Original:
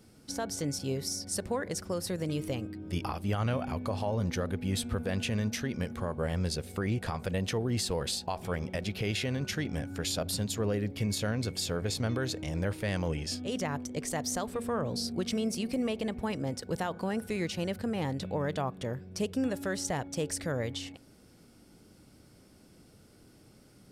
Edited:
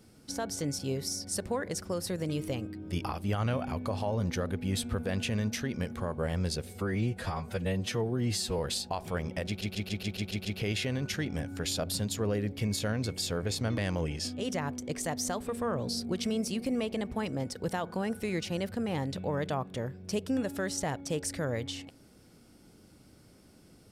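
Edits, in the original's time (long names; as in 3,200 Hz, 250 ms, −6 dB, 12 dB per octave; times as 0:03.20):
0:06.70–0:07.96: time-stretch 1.5×
0:08.84: stutter 0.14 s, 8 plays
0:12.17–0:12.85: remove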